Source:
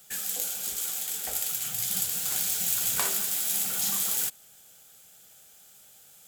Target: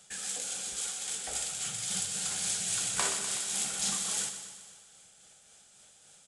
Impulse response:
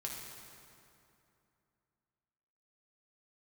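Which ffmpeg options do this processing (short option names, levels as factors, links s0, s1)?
-filter_complex "[0:a]tremolo=f=3.6:d=0.35,asplit=2[s0][s1];[s1]aecho=0:1:124|248|372|496|620|744|868:0.316|0.19|0.114|0.0683|0.041|0.0246|0.0148[s2];[s0][s2]amix=inputs=2:normalize=0,aresample=22050,aresample=44100"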